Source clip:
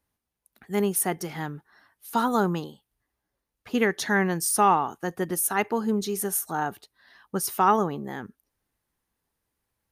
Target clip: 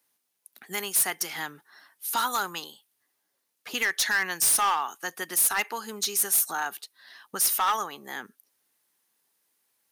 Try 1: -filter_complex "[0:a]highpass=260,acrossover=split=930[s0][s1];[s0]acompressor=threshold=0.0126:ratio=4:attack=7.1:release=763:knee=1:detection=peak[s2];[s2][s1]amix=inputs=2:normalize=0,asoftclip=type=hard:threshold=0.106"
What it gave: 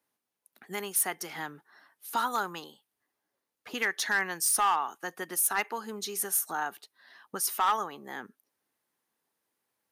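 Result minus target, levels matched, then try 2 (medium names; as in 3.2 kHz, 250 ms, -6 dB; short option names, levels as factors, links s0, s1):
4 kHz band -2.5 dB
-filter_complex "[0:a]highpass=260,highshelf=f=2200:g=11.5,acrossover=split=930[s0][s1];[s0]acompressor=threshold=0.0126:ratio=4:attack=7.1:release=763:knee=1:detection=peak[s2];[s2][s1]amix=inputs=2:normalize=0,asoftclip=type=hard:threshold=0.106"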